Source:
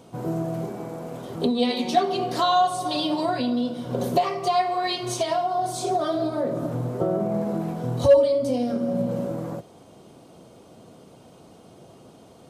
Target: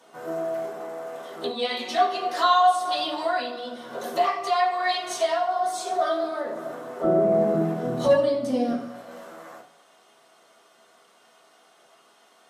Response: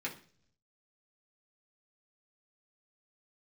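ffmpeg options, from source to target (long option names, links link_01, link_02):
-filter_complex "[0:a]asetnsamples=nb_out_samples=441:pad=0,asendcmd='7.04 highpass f 200;8.73 highpass f 1100',highpass=670[link_01];[1:a]atrim=start_sample=2205,asetrate=35280,aresample=44100[link_02];[link_01][link_02]afir=irnorm=-1:irlink=0"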